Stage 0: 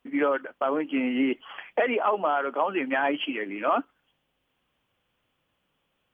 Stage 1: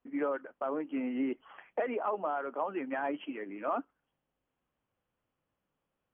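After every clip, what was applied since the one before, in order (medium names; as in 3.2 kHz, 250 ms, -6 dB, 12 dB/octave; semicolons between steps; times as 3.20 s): Bessel low-pass 1.4 kHz, order 2; trim -7.5 dB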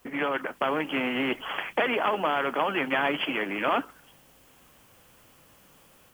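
treble shelf 2.9 kHz +12 dB; level rider gain up to 4.5 dB; spectrum-flattening compressor 2:1; trim +2.5 dB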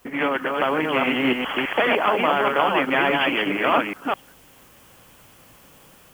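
chunks repeated in reverse 207 ms, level -2 dB; trim +4.5 dB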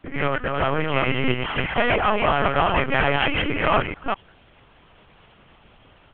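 LPC vocoder at 8 kHz pitch kept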